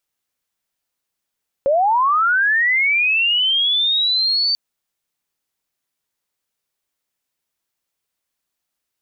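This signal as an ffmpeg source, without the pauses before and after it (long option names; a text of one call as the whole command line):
ffmpeg -f lavfi -i "aevalsrc='pow(10,(-12.5-2.5*t/2.89)/20)*sin(2*PI*(530*t+4070*t*t/(2*2.89)))':duration=2.89:sample_rate=44100" out.wav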